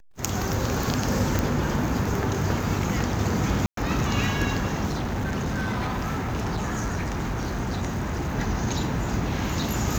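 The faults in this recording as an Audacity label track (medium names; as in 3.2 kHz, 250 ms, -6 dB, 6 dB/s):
1.390000	1.390000	pop
3.660000	3.770000	dropout 113 ms
4.860000	8.350000	clipped -23.5 dBFS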